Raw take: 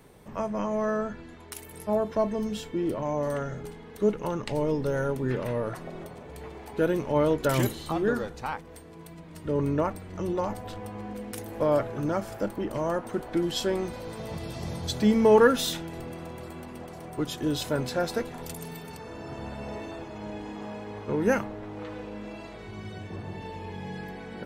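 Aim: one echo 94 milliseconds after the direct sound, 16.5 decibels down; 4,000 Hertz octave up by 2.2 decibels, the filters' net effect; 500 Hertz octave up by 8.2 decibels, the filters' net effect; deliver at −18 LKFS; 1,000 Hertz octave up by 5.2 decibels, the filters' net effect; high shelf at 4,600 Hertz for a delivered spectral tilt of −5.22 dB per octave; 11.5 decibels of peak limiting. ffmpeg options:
ffmpeg -i in.wav -af "equalizer=frequency=500:width_type=o:gain=9,equalizer=frequency=1000:width_type=o:gain=3.5,equalizer=frequency=4000:width_type=o:gain=4,highshelf=frequency=4600:gain=-3.5,alimiter=limit=-12.5dB:level=0:latency=1,aecho=1:1:94:0.15,volume=7.5dB" out.wav

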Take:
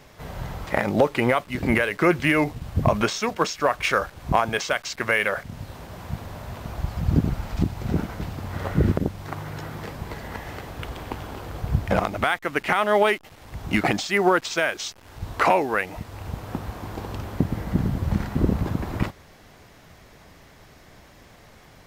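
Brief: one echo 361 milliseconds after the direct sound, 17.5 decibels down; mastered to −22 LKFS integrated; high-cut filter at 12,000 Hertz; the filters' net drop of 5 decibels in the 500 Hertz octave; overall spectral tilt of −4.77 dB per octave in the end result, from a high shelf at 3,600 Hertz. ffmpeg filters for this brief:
ffmpeg -i in.wav -af "lowpass=12000,equalizer=frequency=500:width_type=o:gain=-6.5,highshelf=frequency=3600:gain=-3.5,aecho=1:1:361:0.133,volume=4.5dB" out.wav

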